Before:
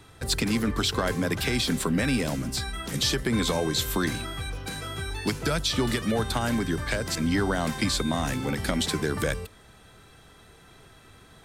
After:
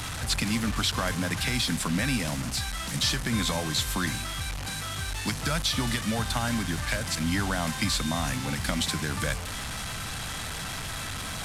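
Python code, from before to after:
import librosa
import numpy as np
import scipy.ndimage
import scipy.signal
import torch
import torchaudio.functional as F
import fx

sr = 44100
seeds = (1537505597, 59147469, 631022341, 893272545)

y = fx.delta_mod(x, sr, bps=64000, step_db=-27.5)
y = fx.peak_eq(y, sr, hz=400.0, db=-12.5, octaves=0.76)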